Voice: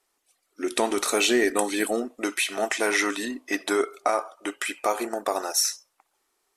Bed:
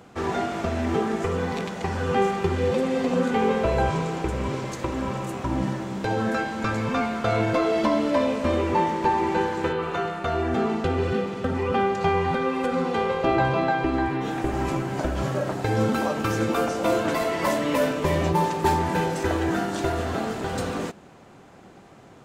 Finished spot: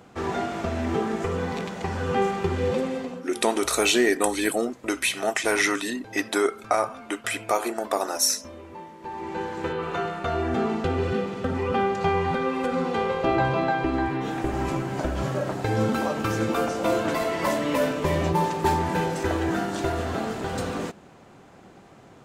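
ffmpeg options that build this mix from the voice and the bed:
ffmpeg -i stem1.wav -i stem2.wav -filter_complex "[0:a]adelay=2650,volume=1dB[link_01];[1:a]volume=16.5dB,afade=type=out:start_time=2.77:duration=0.45:silence=0.133352,afade=type=in:start_time=8.99:duration=0.97:silence=0.125893[link_02];[link_01][link_02]amix=inputs=2:normalize=0" out.wav

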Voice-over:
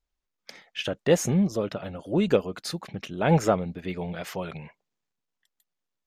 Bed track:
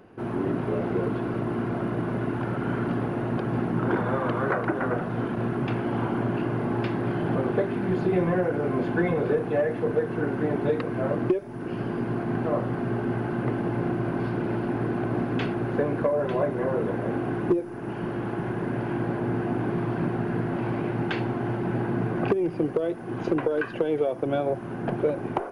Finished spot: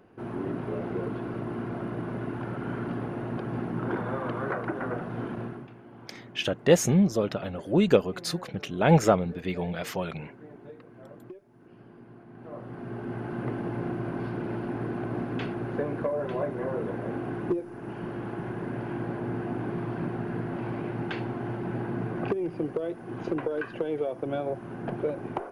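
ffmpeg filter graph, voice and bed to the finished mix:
ffmpeg -i stem1.wav -i stem2.wav -filter_complex "[0:a]adelay=5600,volume=1.5dB[link_01];[1:a]volume=11dB,afade=type=out:start_time=5.33:duration=0.36:silence=0.158489,afade=type=in:start_time=12.34:duration=1.09:silence=0.149624[link_02];[link_01][link_02]amix=inputs=2:normalize=0" out.wav

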